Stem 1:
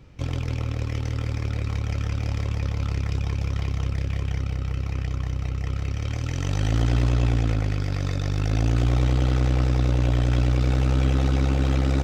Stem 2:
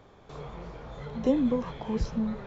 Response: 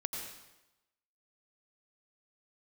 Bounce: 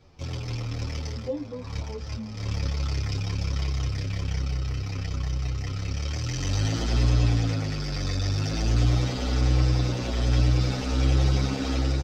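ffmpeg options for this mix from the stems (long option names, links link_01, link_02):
-filter_complex "[0:a]dynaudnorm=framelen=130:gausssize=5:maxgain=5.5dB,volume=-4.5dB[link_01];[1:a]equalizer=frequency=680:width=0.33:gain=9.5,flanger=delay=15.5:depth=2:speed=1.1,volume=-10.5dB,asplit=2[link_02][link_03];[link_03]apad=whole_len=530642[link_04];[link_01][link_04]sidechaincompress=threshold=-49dB:ratio=6:attack=40:release=104[link_05];[link_05][link_02]amix=inputs=2:normalize=0,equalizer=frequency=5000:width=1.7:gain=11,asplit=2[link_06][link_07];[link_07]adelay=8.3,afreqshift=-1.2[link_08];[link_06][link_08]amix=inputs=2:normalize=1"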